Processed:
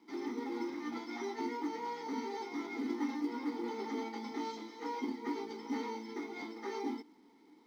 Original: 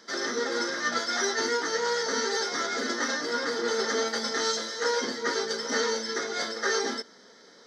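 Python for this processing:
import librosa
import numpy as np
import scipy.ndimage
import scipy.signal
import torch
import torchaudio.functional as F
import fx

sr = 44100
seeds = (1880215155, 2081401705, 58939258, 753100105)

p1 = fx.vowel_filter(x, sr, vowel='u')
p2 = fx.low_shelf(p1, sr, hz=460.0, db=5.0)
p3 = fx.quant_companded(p2, sr, bits=6)
p4 = p2 + (p3 * 10.0 ** (-11.5 / 20.0))
y = p4 * 10.0 ** (1.0 / 20.0)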